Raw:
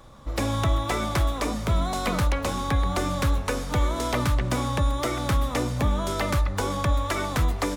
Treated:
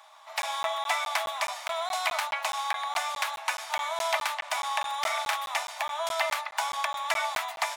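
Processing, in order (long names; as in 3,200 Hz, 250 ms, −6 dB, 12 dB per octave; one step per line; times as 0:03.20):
Chebyshev high-pass with heavy ripple 620 Hz, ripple 6 dB
0:04.67–0:05.36: flutter between parallel walls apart 7 metres, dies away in 0.33 s
regular buffer underruns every 0.21 s, samples 512, zero, from 0:00.42
level +4.5 dB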